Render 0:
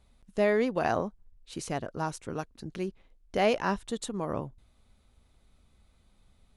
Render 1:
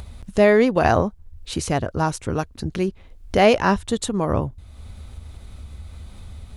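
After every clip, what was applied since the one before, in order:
parametric band 78 Hz +14 dB 0.84 octaves
in parallel at +2 dB: upward compression, threshold −31 dBFS
on the sum: level +3 dB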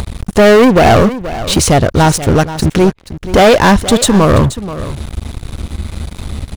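leveller curve on the samples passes 5
single-tap delay 480 ms −14 dB
level −1 dB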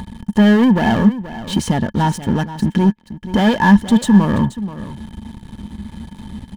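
hollow resonant body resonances 210/900/1,700/3,100 Hz, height 18 dB, ringing for 50 ms
level −15.5 dB

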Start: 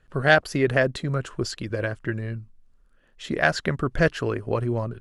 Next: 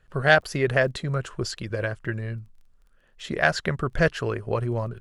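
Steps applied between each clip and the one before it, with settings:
parametric band 280 Hz −6.5 dB 0.57 octaves
surface crackle 16 per second −47 dBFS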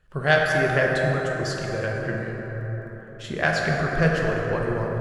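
dense smooth reverb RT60 4.7 s, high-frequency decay 0.35×, DRR −2 dB
level −2.5 dB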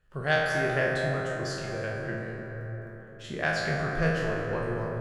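peak hold with a decay on every bin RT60 0.66 s
level −7.5 dB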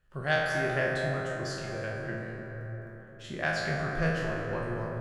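notch filter 450 Hz, Q 12
level −2 dB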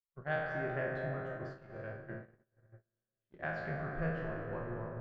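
low-pass filter 1,700 Hz 12 dB per octave
noise gate −35 dBFS, range −38 dB
level −7 dB

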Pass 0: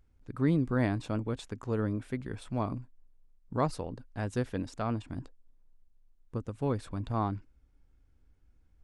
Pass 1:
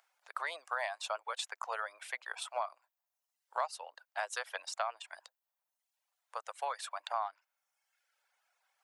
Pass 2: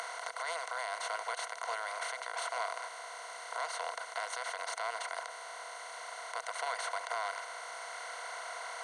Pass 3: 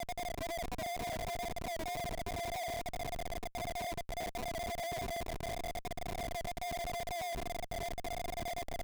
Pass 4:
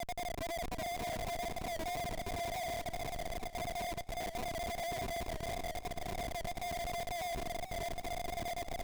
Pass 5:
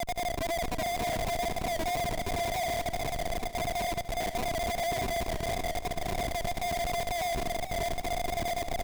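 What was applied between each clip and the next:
reverb reduction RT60 0.93 s; Butterworth high-pass 640 Hz 48 dB per octave; downward compressor 4 to 1, threshold −43 dBFS, peak gain reduction 14 dB; level +10 dB
compressor on every frequency bin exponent 0.2; brickwall limiter −18 dBFS, peak gain reduction 8 dB; EQ curve with evenly spaced ripples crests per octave 1.9, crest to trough 12 dB; level −8 dB
spectral peaks only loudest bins 4; pair of resonant band-passes 1,600 Hz, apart 2.4 octaves; comparator with hysteresis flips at −53.5 dBFS; level +11.5 dB
feedback echo with a swinging delay time 537 ms, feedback 43%, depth 117 cents, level −12.5 dB
repeating echo 72 ms, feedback 25%, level −14.5 dB; level +7.5 dB

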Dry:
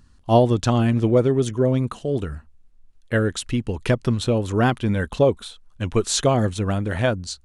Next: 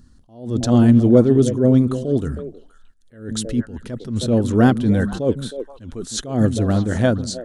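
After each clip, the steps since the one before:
graphic EQ with 15 bands 250 Hz +6 dB, 1,000 Hz −6 dB, 2,500 Hz −10 dB
on a send: echo through a band-pass that steps 158 ms, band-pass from 170 Hz, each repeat 1.4 octaves, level −8 dB
on the sum: level that may rise only so fast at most 120 dB per second
level +3.5 dB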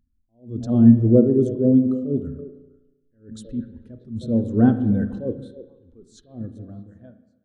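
fade-out on the ending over 2.36 s
spring reverb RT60 1.6 s, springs 35/48 ms, chirp 30 ms, DRR 6 dB
every bin expanded away from the loudest bin 1.5 to 1
level −1 dB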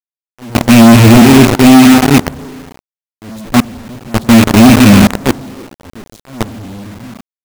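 loose part that buzzes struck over −23 dBFS, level −11 dBFS
low shelf with overshoot 400 Hz +10 dB, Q 1.5
log-companded quantiser 2 bits
level −1 dB

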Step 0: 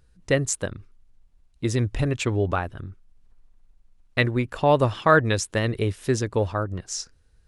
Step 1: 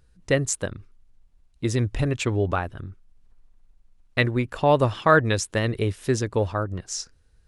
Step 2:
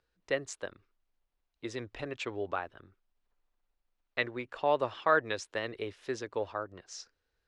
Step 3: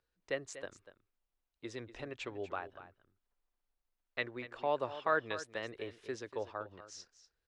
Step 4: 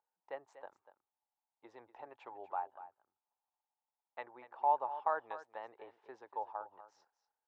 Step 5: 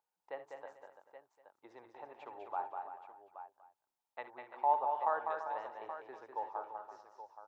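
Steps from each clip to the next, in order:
no processing that can be heard
three-way crossover with the lows and the highs turned down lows −17 dB, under 330 Hz, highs −20 dB, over 5,600 Hz; level −8 dB
single-tap delay 242 ms −13.5 dB; level −5.5 dB
resonant band-pass 850 Hz, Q 9.3; level +11.5 dB
multi-tap delay 62/71/199/339/507/825 ms −14/−16.5/−5.5/−11.5/−20/−11.5 dB

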